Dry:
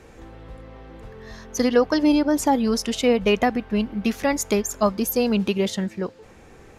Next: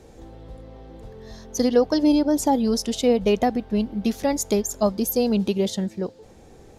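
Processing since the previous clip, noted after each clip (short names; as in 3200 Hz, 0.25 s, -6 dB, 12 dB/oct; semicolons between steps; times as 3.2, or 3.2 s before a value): band shelf 1700 Hz -8.5 dB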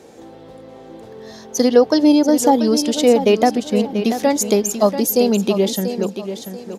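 HPF 210 Hz 12 dB/oct; feedback echo 0.687 s, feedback 30%, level -10 dB; gain +6.5 dB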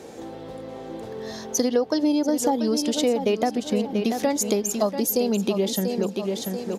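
compressor 3:1, threshold -25 dBFS, peak gain reduction 13.5 dB; gain +2.5 dB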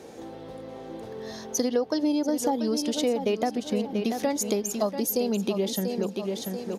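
notch 7500 Hz, Q 13; gain -3.5 dB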